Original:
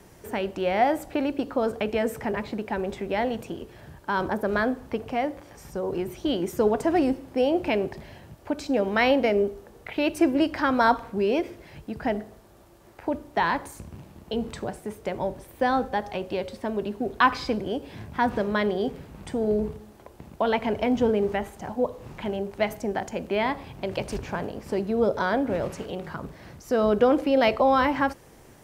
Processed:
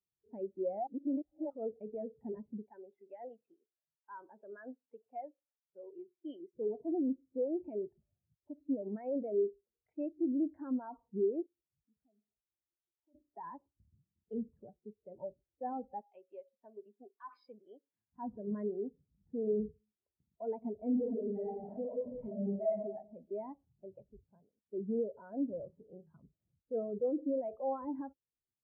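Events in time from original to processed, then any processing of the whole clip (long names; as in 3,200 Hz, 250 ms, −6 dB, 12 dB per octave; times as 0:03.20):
0:00.87–0:01.50: reverse
0:02.70–0:06.55: spectral tilt +4 dB per octave
0:11.46–0:13.15: downward compressor 3 to 1, threshold −46 dBFS
0:16.01–0:18.13: spectral tilt +4.5 dB per octave
0:20.86–0:22.73: thrown reverb, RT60 1.2 s, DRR −6.5 dB
0:23.51–0:24.73: fade out, to −13 dB
whole clip: low-pass filter 1,300 Hz 6 dB per octave; brickwall limiter −21.5 dBFS; every bin expanded away from the loudest bin 2.5 to 1; level −2 dB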